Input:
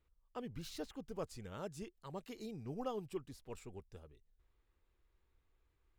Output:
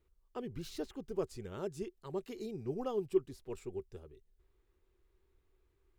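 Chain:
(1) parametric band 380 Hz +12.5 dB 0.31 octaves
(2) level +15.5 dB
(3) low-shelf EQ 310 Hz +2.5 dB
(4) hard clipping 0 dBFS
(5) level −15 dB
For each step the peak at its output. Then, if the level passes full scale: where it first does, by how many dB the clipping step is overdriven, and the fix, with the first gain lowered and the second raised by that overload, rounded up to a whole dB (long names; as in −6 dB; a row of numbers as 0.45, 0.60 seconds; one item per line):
−20.0, −4.5, −3.5, −3.5, −18.5 dBFS
no step passes full scale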